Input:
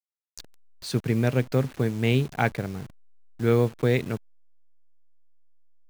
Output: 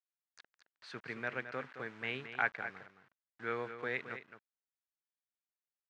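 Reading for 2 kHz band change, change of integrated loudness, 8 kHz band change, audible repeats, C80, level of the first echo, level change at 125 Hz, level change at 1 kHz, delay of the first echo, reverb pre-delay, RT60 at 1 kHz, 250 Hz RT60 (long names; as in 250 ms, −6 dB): −3.5 dB, −14.0 dB, below −20 dB, 1, no reverb audible, −10.5 dB, −29.0 dB, −8.0 dB, 218 ms, no reverb audible, no reverb audible, no reverb audible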